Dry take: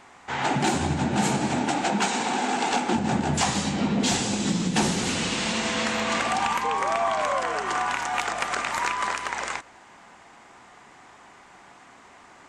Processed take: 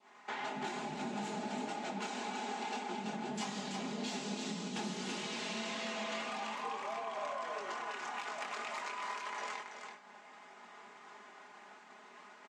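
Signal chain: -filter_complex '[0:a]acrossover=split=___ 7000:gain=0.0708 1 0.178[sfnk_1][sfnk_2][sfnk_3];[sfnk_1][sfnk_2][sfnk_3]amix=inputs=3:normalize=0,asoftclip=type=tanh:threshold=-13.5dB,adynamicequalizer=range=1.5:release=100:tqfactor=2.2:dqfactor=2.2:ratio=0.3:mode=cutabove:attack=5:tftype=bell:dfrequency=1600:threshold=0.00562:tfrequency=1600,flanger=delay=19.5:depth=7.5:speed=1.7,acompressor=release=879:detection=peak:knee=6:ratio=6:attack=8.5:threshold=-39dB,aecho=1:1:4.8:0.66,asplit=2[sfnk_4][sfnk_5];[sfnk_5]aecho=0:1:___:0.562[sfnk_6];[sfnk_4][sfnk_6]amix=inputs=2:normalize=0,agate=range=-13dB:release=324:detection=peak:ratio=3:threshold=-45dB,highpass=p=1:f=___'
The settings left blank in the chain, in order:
190, 331, 68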